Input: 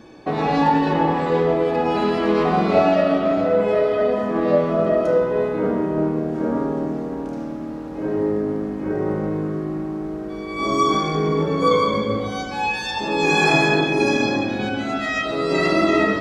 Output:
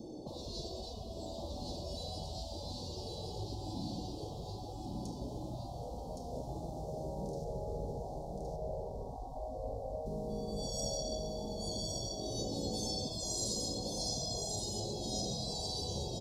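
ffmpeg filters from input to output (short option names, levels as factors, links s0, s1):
-filter_complex "[0:a]asettb=1/sr,asplit=3[s0][s1][s2];[s0]atrim=end=7.444[s3];[s1]atrim=start=7.44:end=10.06,asetpts=PTS-STARTPTS,afade=t=in:d=0.004:c=qsin,afade=t=out:st=2.616:d=0.004:c=qsin,tiltshelf=f=1400:g=8[s4];[s2]atrim=start=10.056[s5];[s3][s4]acrossfade=d=0.004:c1=hsin:c2=qsin[s6];[s6][s5]acrossfade=d=0.004:c1=qsin:c2=hsin,afftfilt=real='re*lt(hypot(re,im),0.158)':imag='im*lt(hypot(re,im),0.158)':win_size=1024:overlap=0.75,acrossover=split=470|3000[s7][s8][s9];[s8]acompressor=threshold=0.00631:ratio=2.5[s10];[s7][s10][s9]amix=inputs=3:normalize=0,asuperstop=centerf=1800:order=8:qfactor=0.52,aecho=1:1:1117:0.668,volume=0.841"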